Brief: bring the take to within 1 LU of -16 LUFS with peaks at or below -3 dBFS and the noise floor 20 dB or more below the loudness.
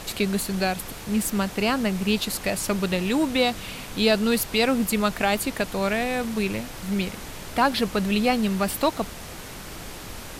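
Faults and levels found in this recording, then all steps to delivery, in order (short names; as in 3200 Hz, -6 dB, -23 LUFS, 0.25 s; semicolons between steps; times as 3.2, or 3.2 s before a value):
noise floor -38 dBFS; noise floor target -45 dBFS; loudness -24.5 LUFS; peak -8.0 dBFS; loudness target -16.0 LUFS
-> noise print and reduce 7 dB; gain +8.5 dB; limiter -3 dBFS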